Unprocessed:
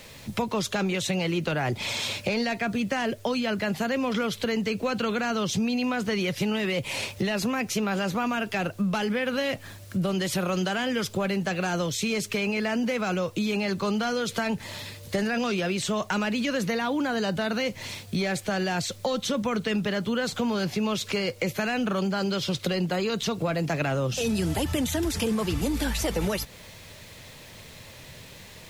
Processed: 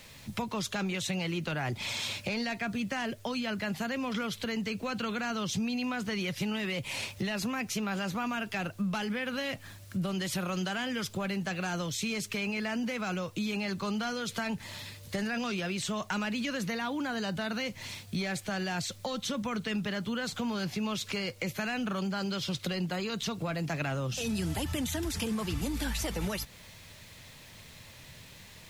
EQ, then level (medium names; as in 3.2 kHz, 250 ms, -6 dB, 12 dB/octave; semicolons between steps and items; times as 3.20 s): peaking EQ 470 Hz -5.5 dB 1.2 oct; -4.5 dB